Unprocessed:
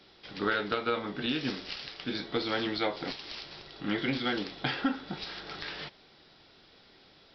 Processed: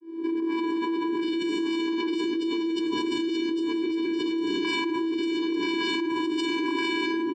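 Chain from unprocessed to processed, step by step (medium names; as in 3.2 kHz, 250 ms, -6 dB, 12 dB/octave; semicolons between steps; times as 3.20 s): fade-in on the opening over 0.78 s; level-controlled noise filter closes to 860 Hz, open at -30 dBFS; 2.19–4.58 s: bass shelf 350 Hz +8.5 dB; peak limiter -24 dBFS, peak gain reduction 10 dB; vocoder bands 8, square 330 Hz; delay 1159 ms -5 dB; simulated room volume 3600 m³, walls furnished, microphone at 3.5 m; level flattener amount 100%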